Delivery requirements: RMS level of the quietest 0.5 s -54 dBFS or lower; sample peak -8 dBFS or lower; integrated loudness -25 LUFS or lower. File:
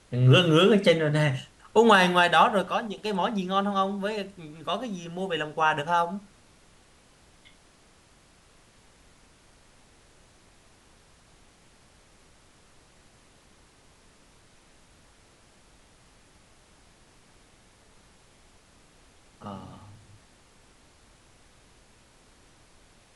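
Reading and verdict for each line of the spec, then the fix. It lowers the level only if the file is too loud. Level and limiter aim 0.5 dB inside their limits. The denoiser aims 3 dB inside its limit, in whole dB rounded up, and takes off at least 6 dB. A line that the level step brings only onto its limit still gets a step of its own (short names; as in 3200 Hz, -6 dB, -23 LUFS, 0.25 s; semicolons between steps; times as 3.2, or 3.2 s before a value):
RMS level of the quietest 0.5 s -58 dBFS: OK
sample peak -5.0 dBFS: fail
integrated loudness -23.5 LUFS: fail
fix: gain -2 dB; limiter -8.5 dBFS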